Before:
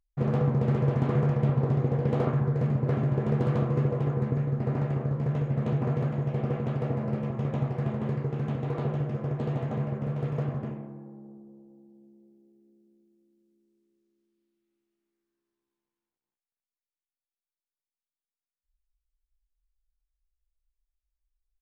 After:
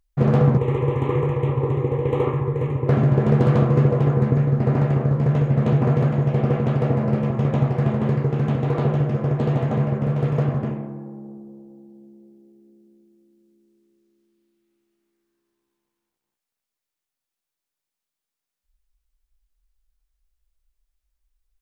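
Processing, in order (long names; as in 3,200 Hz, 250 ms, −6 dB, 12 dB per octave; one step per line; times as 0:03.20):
0:00.57–0:02.89: phaser with its sweep stopped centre 1,000 Hz, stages 8
level +9 dB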